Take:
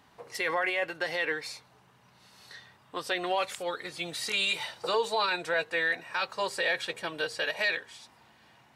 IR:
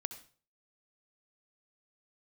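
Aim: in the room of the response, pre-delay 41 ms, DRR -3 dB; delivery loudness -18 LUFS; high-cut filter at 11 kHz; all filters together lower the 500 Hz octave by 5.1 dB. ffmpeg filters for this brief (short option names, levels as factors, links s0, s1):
-filter_complex "[0:a]lowpass=11000,equalizer=f=500:t=o:g=-6,asplit=2[s0][s1];[1:a]atrim=start_sample=2205,adelay=41[s2];[s1][s2]afir=irnorm=-1:irlink=0,volume=1.58[s3];[s0][s3]amix=inputs=2:normalize=0,volume=2.66"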